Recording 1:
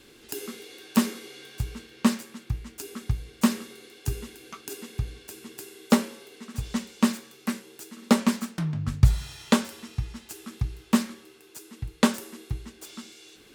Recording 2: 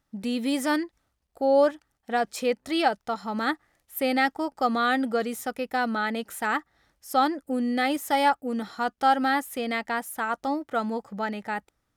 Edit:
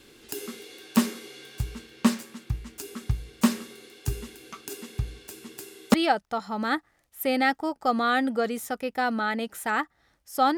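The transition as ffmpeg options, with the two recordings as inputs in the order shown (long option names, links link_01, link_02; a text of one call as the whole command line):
ffmpeg -i cue0.wav -i cue1.wav -filter_complex "[0:a]apad=whole_dur=10.57,atrim=end=10.57,atrim=end=5.942[link_01];[1:a]atrim=start=2.698:end=7.33[link_02];[link_01][link_02]acrossfade=duration=0.004:curve1=hsin:curve2=hsin" out.wav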